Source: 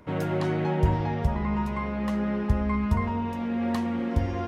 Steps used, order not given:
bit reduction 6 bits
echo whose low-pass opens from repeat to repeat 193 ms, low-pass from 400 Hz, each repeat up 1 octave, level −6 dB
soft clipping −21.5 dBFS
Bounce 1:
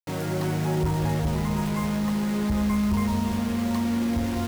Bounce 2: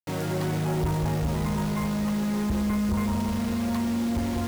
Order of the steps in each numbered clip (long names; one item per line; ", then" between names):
bit reduction, then soft clipping, then echo whose low-pass opens from repeat to repeat
echo whose low-pass opens from repeat to repeat, then bit reduction, then soft clipping